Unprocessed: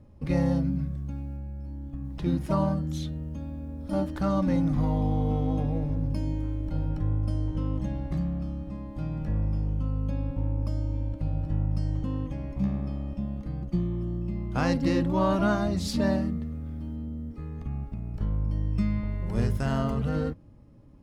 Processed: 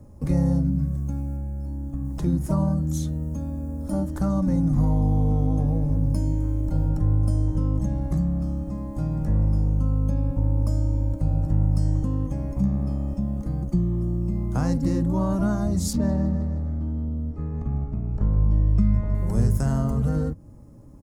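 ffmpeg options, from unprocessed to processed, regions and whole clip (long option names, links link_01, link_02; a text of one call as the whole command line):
ffmpeg -i in.wav -filter_complex "[0:a]asettb=1/sr,asplit=3[link_01][link_02][link_03];[link_01]atrim=end=15.934[link_04];[link_02]atrim=start=15.93:end=19.15,asetpts=PTS-STARTPTS,afade=type=in:duration=0.004:curve=qsin,afade=type=out:start_time=3.216:duration=0.004:curve=qsin,adynamicsmooth=sensitivity=3.5:basefreq=3500,aecho=1:1:156|312|468|624:0.316|0.126|0.0506|0.0202,atrim=end_sample=142002[link_05];[link_03]atrim=start=19.146[link_06];[link_04][link_05]acrossfade=duration=0.004:curve1=hsin:curve2=qsin[link_07];[link_07][link_06]acrossfade=duration=0.004:curve1=qsin:curve2=hsin,acrossover=split=200[link_08][link_09];[link_09]acompressor=threshold=-39dB:ratio=2.5[link_10];[link_08][link_10]amix=inputs=2:normalize=0,firequalizer=gain_entry='entry(910,0);entry(2700,-11);entry(3900,-7);entry(6800,9)':delay=0.05:min_phase=1,volume=6.5dB" out.wav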